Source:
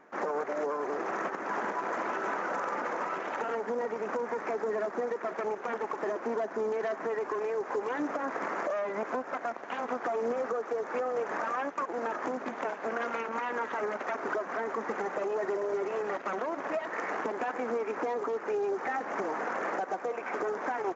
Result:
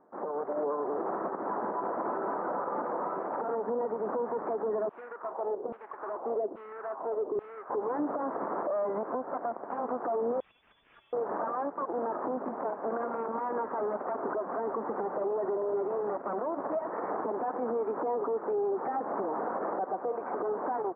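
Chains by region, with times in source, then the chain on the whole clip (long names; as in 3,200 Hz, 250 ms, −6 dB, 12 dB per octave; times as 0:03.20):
0:04.89–0:07.70: each half-wave held at its own peak + auto-filter band-pass saw down 1.2 Hz 320–3,200 Hz
0:10.40–0:11.13: notch filter 1,800 Hz, Q 19 + downward compressor 2 to 1, threshold −35 dBFS + voice inversion scrambler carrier 3,900 Hz
whole clip: low-pass filter 1,100 Hz 24 dB per octave; automatic gain control gain up to 7 dB; brickwall limiter −20.5 dBFS; level −3.5 dB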